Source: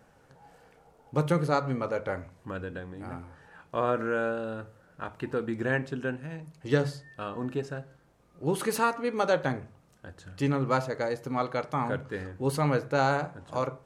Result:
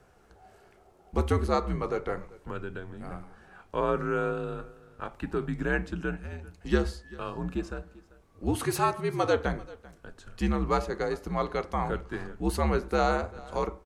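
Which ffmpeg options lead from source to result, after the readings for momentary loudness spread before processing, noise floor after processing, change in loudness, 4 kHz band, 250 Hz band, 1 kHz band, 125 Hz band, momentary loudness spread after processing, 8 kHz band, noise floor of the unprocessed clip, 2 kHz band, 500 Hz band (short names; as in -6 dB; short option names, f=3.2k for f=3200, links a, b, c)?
15 LU, -59 dBFS, 0.0 dB, 0.0 dB, 0.0 dB, -0.5 dB, -1.5 dB, 15 LU, 0.0 dB, -61 dBFS, -1.5 dB, -0.5 dB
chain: -filter_complex "[0:a]asplit=2[a][b];[b]aecho=0:1:391:0.0891[c];[a][c]amix=inputs=2:normalize=0,afreqshift=-76"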